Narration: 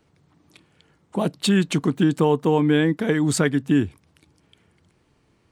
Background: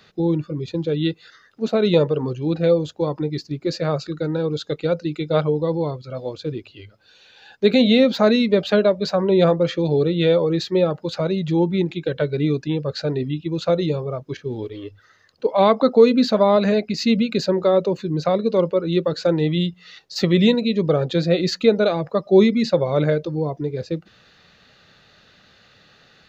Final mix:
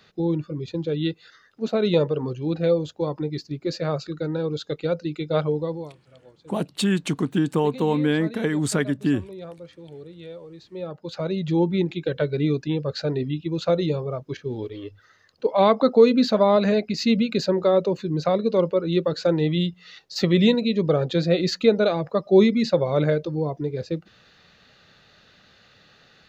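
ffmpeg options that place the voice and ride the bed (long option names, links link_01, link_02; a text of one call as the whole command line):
ffmpeg -i stem1.wav -i stem2.wav -filter_complex "[0:a]adelay=5350,volume=-3dB[link_01];[1:a]volume=17dB,afade=type=out:start_time=5.57:duration=0.37:silence=0.112202,afade=type=in:start_time=10.69:duration=0.84:silence=0.0944061[link_02];[link_01][link_02]amix=inputs=2:normalize=0" out.wav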